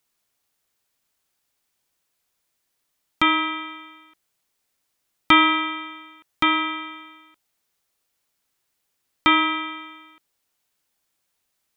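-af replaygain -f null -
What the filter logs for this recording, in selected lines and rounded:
track_gain = +2.5 dB
track_peak = 0.612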